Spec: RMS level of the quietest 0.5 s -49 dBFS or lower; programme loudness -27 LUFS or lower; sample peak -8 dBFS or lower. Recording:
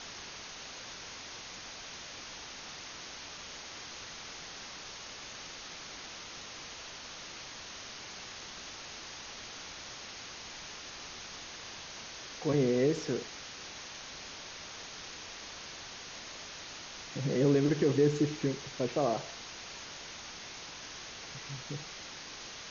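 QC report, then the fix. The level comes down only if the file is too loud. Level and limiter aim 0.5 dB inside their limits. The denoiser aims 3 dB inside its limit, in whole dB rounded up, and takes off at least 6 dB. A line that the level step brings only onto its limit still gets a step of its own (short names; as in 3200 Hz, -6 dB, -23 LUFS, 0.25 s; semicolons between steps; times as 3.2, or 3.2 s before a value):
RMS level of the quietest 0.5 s -46 dBFS: fail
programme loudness -37.5 LUFS: OK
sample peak -15.5 dBFS: OK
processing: denoiser 6 dB, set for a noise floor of -46 dBFS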